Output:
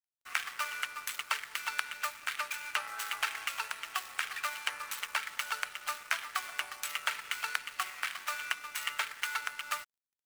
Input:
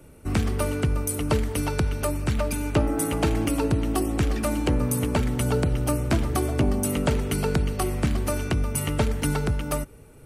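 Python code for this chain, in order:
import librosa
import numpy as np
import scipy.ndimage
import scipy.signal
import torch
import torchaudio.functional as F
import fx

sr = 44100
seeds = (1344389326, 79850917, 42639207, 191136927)

p1 = scipy.signal.medfilt(x, 9)
p2 = scipy.signal.sosfilt(scipy.signal.butter(4, 1300.0, 'highpass', fs=sr, output='sos'), p1)
p3 = fx.rider(p2, sr, range_db=10, speed_s=0.5)
p4 = p2 + (p3 * 10.0 ** (-3.0 / 20.0))
y = np.sign(p4) * np.maximum(np.abs(p4) - 10.0 ** (-52.0 / 20.0), 0.0)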